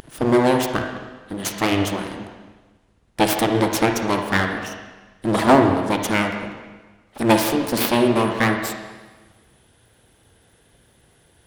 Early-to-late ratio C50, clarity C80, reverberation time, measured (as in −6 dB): 5.0 dB, 7.0 dB, 1.3 s